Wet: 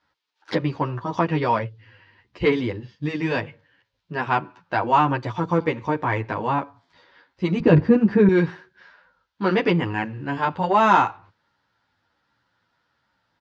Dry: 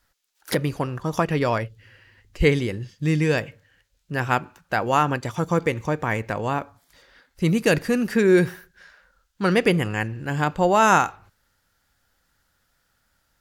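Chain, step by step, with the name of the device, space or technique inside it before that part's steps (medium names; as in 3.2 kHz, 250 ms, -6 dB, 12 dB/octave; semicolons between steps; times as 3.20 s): barber-pole flanger into a guitar amplifier (endless flanger 10.2 ms -1.4 Hz; saturation -12 dBFS, distortion -20 dB; cabinet simulation 110–4600 Hz, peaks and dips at 110 Hz +4 dB, 310 Hz +5 dB, 960 Hz +9 dB); 7.60–8.29 s: tilt EQ -4 dB/octave; trim +2 dB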